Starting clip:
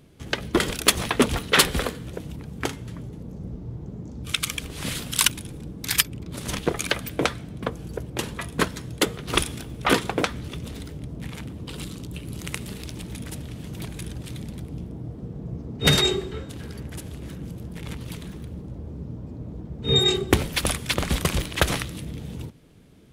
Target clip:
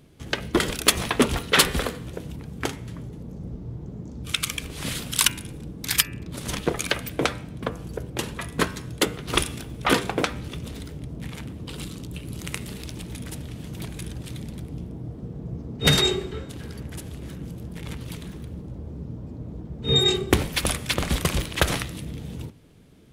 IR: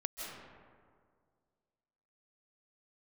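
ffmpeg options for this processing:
-af "bandreject=f=98.63:t=h:w=4,bandreject=f=197.26:t=h:w=4,bandreject=f=295.89:t=h:w=4,bandreject=f=394.52:t=h:w=4,bandreject=f=493.15:t=h:w=4,bandreject=f=591.78:t=h:w=4,bandreject=f=690.41:t=h:w=4,bandreject=f=789.04:t=h:w=4,bandreject=f=887.67:t=h:w=4,bandreject=f=986.3:t=h:w=4,bandreject=f=1.08493k:t=h:w=4,bandreject=f=1.18356k:t=h:w=4,bandreject=f=1.28219k:t=h:w=4,bandreject=f=1.38082k:t=h:w=4,bandreject=f=1.47945k:t=h:w=4,bandreject=f=1.57808k:t=h:w=4,bandreject=f=1.67671k:t=h:w=4,bandreject=f=1.77534k:t=h:w=4,bandreject=f=1.87397k:t=h:w=4,bandreject=f=1.9726k:t=h:w=4,bandreject=f=2.07123k:t=h:w=4,bandreject=f=2.16986k:t=h:w=4,bandreject=f=2.26849k:t=h:w=4,bandreject=f=2.36712k:t=h:w=4,bandreject=f=2.46575k:t=h:w=4,bandreject=f=2.56438k:t=h:w=4,bandreject=f=2.66301k:t=h:w=4,bandreject=f=2.76164k:t=h:w=4,bandreject=f=2.86027k:t=h:w=4"

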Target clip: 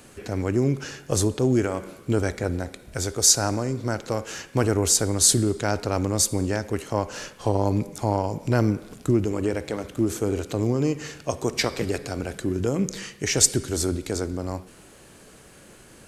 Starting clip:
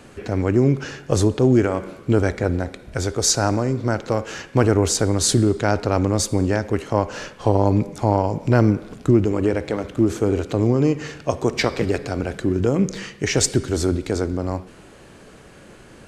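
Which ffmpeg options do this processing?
-af "aemphasis=mode=production:type=50fm,volume=-5dB"

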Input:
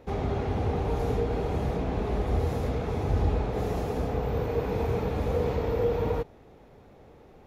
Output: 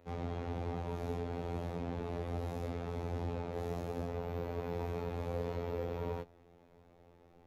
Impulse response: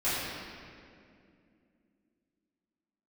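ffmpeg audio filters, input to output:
-filter_complex "[0:a]afftfilt=real='hypot(re,im)*cos(PI*b)':imag='0':win_size=2048:overlap=0.75,acrossover=split=130|3000[a][b][c];[a]acompressor=threshold=-35dB:ratio=5[d];[d][b][c]amix=inputs=3:normalize=0,volume=-6dB"

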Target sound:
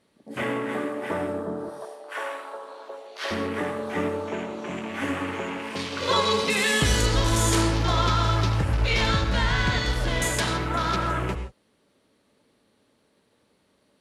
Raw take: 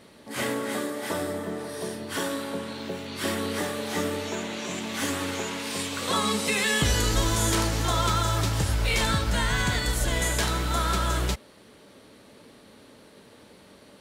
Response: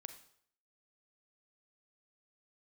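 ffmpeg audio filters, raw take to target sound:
-filter_complex "[0:a]afwtdn=0.0178,asettb=1/sr,asplit=3[a][b][c];[a]atrim=end=1.694[d];[b]atrim=start=1.69:end=3.31,asetpts=PTS-STARTPTS,afade=t=in:d=0.004:c=qsin,afade=t=out:st=1.616:d=0.004:c=qsin,highpass=f=540:w=0.5412,highpass=f=540:w=1.3066[e];[c]atrim=start=3.306[f];[d][e]acrossfade=d=0.004:c1=hsin:c2=qsin[g];[g][f]acrossfade=d=0.004:c1=qsin:c2=hsin,asettb=1/sr,asplit=3[h][i][j];[h]atrim=end=6.004[k];[i]atrim=start=6:end=6.44,asetpts=PTS-STARTPTS,afade=t=in:d=0.004:c=qsin,afade=t=out:st=0.436:d=0.004:c=qsin,aecho=1:1:2:0.91,atrim=end_sample=19404[l];[j]atrim=start=6.436[m];[k][l]acrossfade=d=0.004:c1=hsin:c2=qsin[n];[n][m]acrossfade=d=0.004:c1=qsin:c2=hsin[o];[1:a]atrim=start_sample=2205,atrim=end_sample=3969,asetrate=23373,aresample=44100[p];[o][p]afir=irnorm=-1:irlink=0,volume=4dB"

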